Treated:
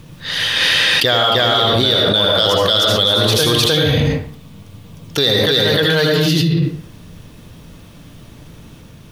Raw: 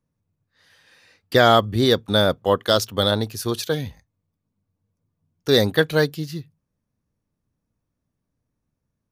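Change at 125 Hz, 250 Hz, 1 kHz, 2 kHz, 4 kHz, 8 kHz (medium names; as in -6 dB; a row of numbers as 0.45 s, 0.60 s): +8.5 dB, +5.5 dB, +3.5 dB, +9.0 dB, +13.0 dB, +10.0 dB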